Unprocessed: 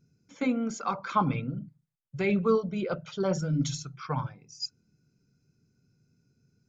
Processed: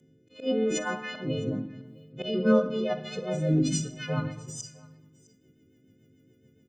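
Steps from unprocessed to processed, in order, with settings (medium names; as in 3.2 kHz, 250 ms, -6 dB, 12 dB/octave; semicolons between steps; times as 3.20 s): partials quantised in pitch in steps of 3 st; treble shelf 3.8 kHz +8.5 dB; in parallel at +2 dB: compression, threshold -42 dBFS, peak gain reduction 22 dB; on the sum: slow attack 169 ms; ten-band graphic EQ 125 Hz +5 dB, 250 Hz +4 dB, 500 Hz +9 dB, 1 kHz -7 dB, 2 kHz +5 dB, 4 kHz -4 dB; rotary cabinet horn 1 Hz, later 7 Hz, at 1.92 s; formant shift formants +4 st; delay 658 ms -24 dB; on a send at -9.5 dB: reverberation RT60 1.0 s, pre-delay 21 ms; on the sum: trim -3.5 dB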